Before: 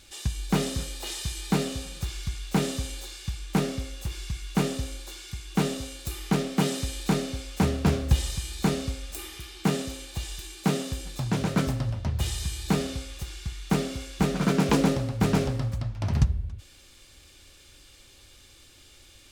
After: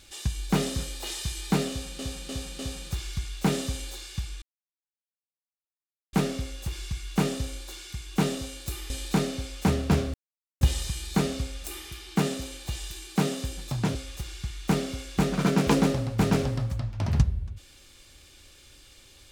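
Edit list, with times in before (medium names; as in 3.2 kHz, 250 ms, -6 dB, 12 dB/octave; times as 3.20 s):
1.69–1.99 s: loop, 4 plays
3.52 s: insert silence 1.71 s
6.29–6.85 s: delete
8.09 s: insert silence 0.47 s
11.43–12.97 s: delete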